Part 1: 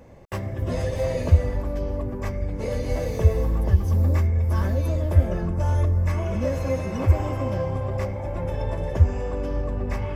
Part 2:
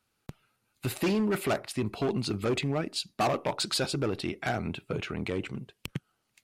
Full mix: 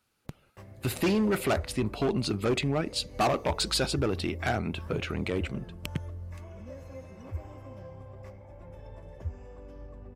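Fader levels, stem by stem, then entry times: −19.0, +1.5 decibels; 0.25, 0.00 seconds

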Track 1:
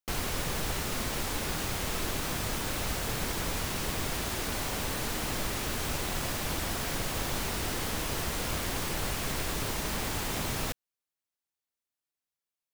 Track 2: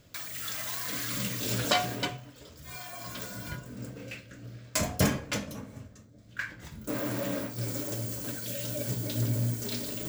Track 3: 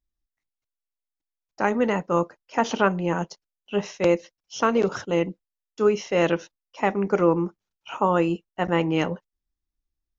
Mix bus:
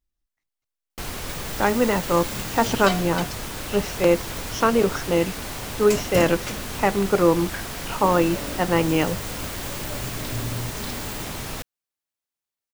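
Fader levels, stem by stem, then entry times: +0.5, −1.5, +2.0 decibels; 0.90, 1.15, 0.00 seconds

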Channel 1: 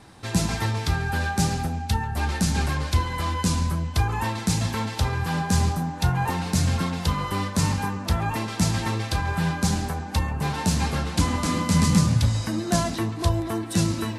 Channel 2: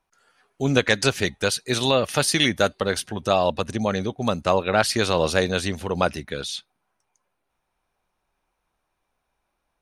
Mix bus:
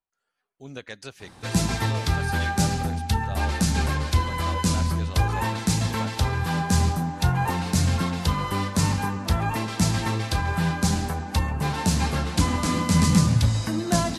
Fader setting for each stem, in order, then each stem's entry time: +0.5, −19.0 decibels; 1.20, 0.00 seconds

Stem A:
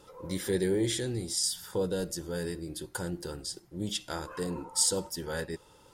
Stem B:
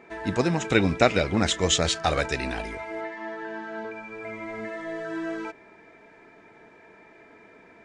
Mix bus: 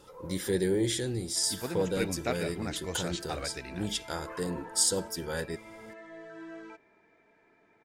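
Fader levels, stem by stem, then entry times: +0.5, −13.0 decibels; 0.00, 1.25 seconds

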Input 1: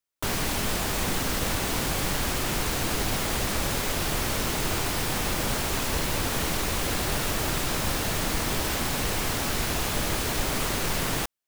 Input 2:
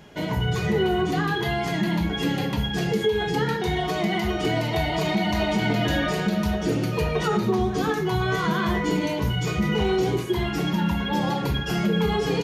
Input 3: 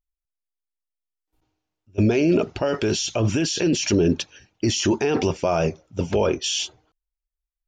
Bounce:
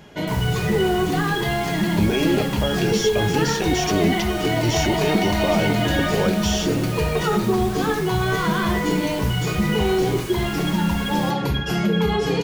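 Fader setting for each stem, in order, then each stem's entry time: −8.5, +2.5, −2.5 decibels; 0.05, 0.00, 0.00 seconds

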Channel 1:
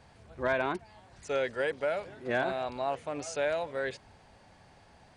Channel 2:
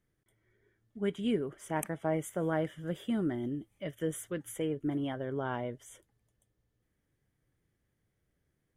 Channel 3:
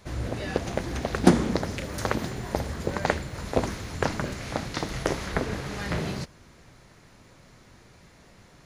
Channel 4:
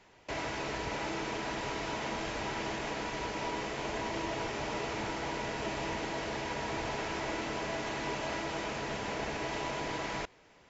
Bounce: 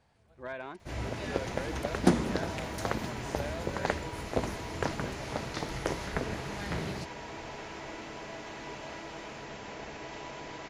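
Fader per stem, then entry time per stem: −11.0, −15.5, −6.0, −6.5 decibels; 0.00, 0.00, 0.80, 0.60 seconds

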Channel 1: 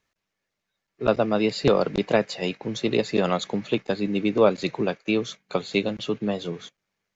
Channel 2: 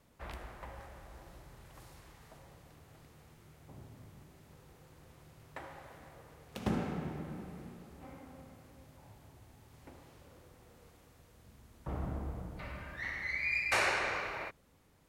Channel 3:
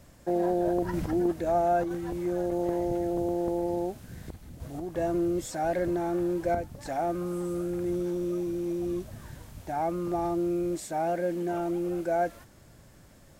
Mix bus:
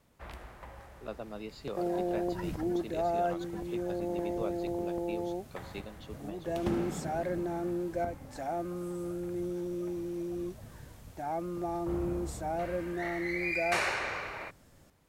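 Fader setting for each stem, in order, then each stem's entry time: −20.0, −0.5, −5.5 decibels; 0.00, 0.00, 1.50 seconds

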